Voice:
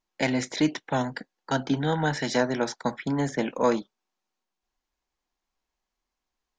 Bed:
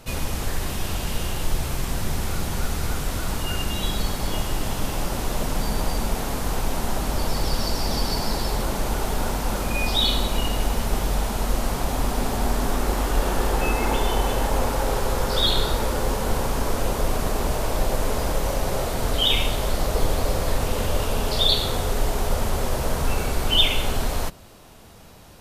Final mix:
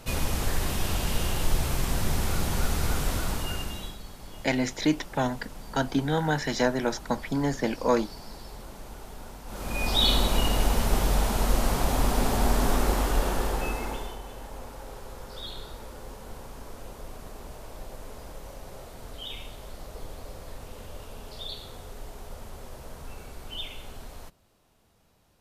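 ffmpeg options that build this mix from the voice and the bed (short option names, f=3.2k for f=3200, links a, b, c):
-filter_complex "[0:a]adelay=4250,volume=-0.5dB[a];[1:a]volume=16.5dB,afade=t=out:st=3.09:d=0.89:silence=0.141254,afade=t=in:st=9.46:d=0.65:silence=0.133352,afade=t=out:st=12.74:d=1.45:silence=0.125893[b];[a][b]amix=inputs=2:normalize=0"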